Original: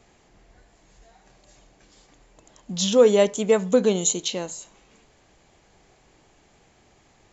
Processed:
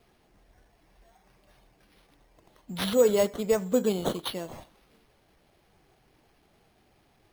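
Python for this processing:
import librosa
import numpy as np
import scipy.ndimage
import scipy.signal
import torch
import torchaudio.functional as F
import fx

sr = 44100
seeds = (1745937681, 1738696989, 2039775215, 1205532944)

y = fx.spec_quant(x, sr, step_db=15)
y = np.repeat(y[::6], 6)[:len(y)]
y = F.gain(torch.from_numpy(y), -5.5).numpy()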